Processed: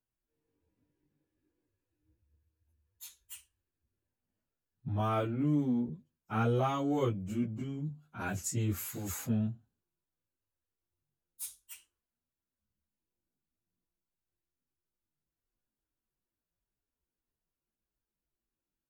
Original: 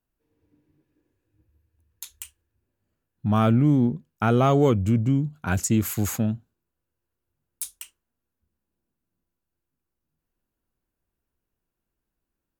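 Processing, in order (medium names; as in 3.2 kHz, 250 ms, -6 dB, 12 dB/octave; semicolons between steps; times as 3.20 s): plain phase-vocoder stretch 1.5×; trim -7 dB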